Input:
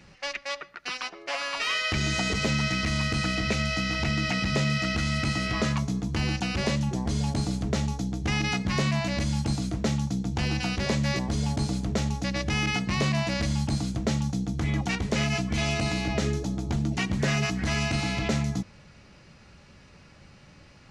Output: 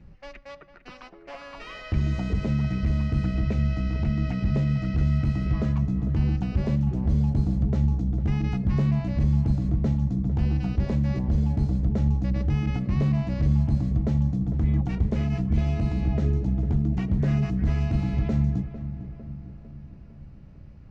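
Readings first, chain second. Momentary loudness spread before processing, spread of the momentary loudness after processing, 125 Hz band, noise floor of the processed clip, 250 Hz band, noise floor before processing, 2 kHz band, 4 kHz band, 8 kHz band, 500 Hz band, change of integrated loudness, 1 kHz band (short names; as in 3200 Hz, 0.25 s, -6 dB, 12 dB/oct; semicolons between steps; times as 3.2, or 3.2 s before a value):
4 LU, 11 LU, +5.0 dB, -47 dBFS, +2.0 dB, -53 dBFS, -13.5 dB, under -15 dB, under -20 dB, -4.0 dB, +2.5 dB, -8.5 dB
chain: tilt -4.5 dB/oct; darkening echo 0.452 s, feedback 58%, low-pass 2100 Hz, level -12 dB; gain -9 dB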